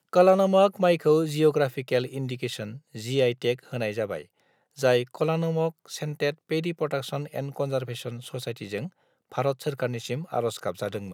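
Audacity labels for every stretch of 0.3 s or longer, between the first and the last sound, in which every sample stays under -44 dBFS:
4.250000	4.770000	silence
8.890000	9.320000	silence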